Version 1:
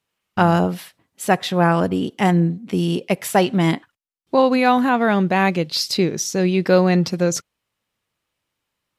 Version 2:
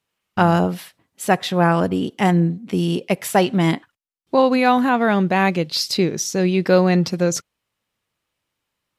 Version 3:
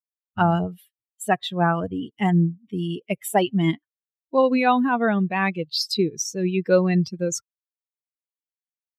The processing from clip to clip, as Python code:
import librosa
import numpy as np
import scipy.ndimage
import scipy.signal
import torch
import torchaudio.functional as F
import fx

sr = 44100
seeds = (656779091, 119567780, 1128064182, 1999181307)

y1 = x
y2 = fx.bin_expand(y1, sr, power=2.0)